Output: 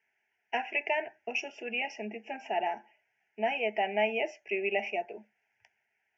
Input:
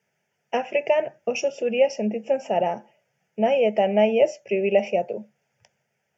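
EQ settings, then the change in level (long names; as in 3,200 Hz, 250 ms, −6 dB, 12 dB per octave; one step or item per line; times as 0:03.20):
high-frequency loss of the air 270 metres
tilt shelving filter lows −10 dB, about 1,200 Hz
phaser with its sweep stopped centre 800 Hz, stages 8
0.0 dB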